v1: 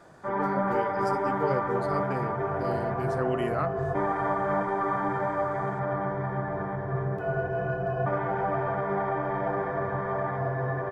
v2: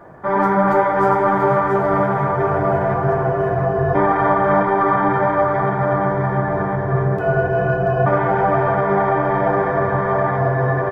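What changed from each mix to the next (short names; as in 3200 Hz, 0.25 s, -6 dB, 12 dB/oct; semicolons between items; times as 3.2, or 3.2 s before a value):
speech -12.0 dB; background +11.5 dB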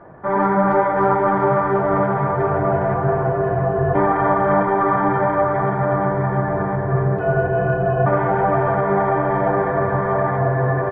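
speech: entry +0.55 s; master: add air absorption 300 m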